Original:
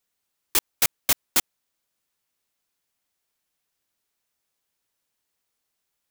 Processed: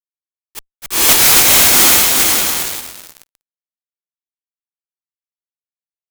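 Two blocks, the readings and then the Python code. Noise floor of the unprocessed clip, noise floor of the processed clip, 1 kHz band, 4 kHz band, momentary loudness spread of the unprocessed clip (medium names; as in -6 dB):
-80 dBFS, under -85 dBFS, +18.0 dB, +18.0 dB, 3 LU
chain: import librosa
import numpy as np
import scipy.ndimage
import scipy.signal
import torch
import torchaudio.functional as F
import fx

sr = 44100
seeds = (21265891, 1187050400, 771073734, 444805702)

y = fx.echo_diffused(x, sr, ms=480, feedback_pct=47, wet_db=-5.5)
y = fx.fuzz(y, sr, gain_db=40.0, gate_db=-40.0)
y = fx.auto_swell(y, sr, attack_ms=296.0)
y = y * librosa.db_to_amplitude(7.5)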